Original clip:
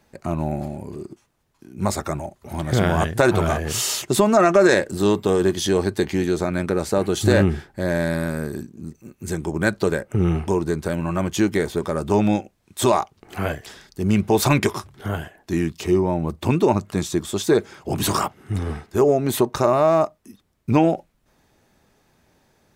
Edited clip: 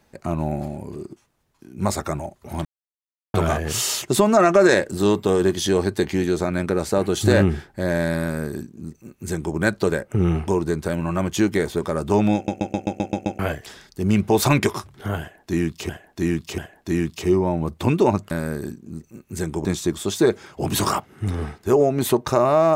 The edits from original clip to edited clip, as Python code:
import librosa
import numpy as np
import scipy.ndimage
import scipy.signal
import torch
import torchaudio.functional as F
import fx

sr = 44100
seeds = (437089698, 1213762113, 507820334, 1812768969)

y = fx.edit(x, sr, fx.silence(start_s=2.65, length_s=0.69),
    fx.duplicate(start_s=8.22, length_s=1.34, to_s=16.93),
    fx.stutter_over(start_s=12.35, slice_s=0.13, count=8),
    fx.repeat(start_s=15.2, length_s=0.69, count=3), tone=tone)